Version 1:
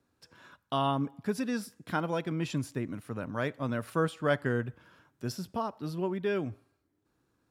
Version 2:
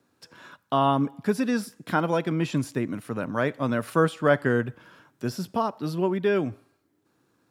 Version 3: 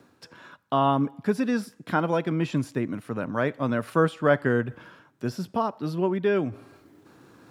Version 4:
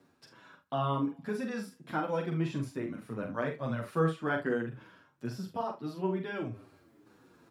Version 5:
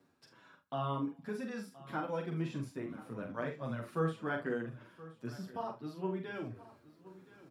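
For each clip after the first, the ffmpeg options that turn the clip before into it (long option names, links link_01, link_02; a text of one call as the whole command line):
ffmpeg -i in.wav -filter_complex "[0:a]highpass=130,acrossover=split=2100[link_01][link_02];[link_02]alimiter=level_in=15.5dB:limit=-24dB:level=0:latency=1:release=21,volume=-15.5dB[link_03];[link_01][link_03]amix=inputs=2:normalize=0,volume=7.5dB" out.wav
ffmpeg -i in.wav -af "highshelf=frequency=4900:gain=-7,areverse,acompressor=mode=upward:threshold=-38dB:ratio=2.5,areverse" out.wav
ffmpeg -i in.wav -filter_complex "[0:a]aecho=1:1:43|74:0.531|0.188,asplit=2[link_01][link_02];[link_02]adelay=7.9,afreqshift=-1.8[link_03];[link_01][link_03]amix=inputs=2:normalize=1,volume=-6dB" out.wav
ffmpeg -i in.wav -af "aecho=1:1:1023|2046|3069:0.126|0.0428|0.0146,volume=-5dB" out.wav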